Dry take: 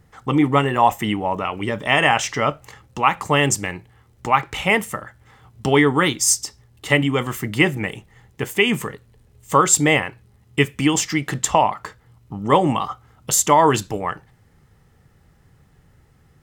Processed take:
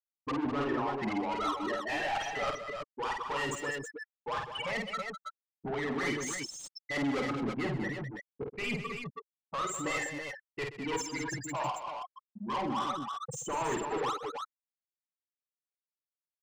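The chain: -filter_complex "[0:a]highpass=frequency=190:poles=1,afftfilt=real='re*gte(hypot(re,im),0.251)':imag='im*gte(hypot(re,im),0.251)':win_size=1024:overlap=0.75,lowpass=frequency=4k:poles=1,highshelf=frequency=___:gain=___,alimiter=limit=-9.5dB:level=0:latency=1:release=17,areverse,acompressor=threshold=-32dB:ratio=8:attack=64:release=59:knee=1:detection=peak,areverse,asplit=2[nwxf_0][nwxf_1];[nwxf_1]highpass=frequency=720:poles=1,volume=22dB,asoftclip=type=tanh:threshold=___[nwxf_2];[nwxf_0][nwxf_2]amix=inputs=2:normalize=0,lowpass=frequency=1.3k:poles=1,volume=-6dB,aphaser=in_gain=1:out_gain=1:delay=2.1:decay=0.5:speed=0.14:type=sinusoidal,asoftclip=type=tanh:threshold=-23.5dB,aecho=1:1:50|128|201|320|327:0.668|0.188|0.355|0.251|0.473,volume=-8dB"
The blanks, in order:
3.1k, 9.5, -12dB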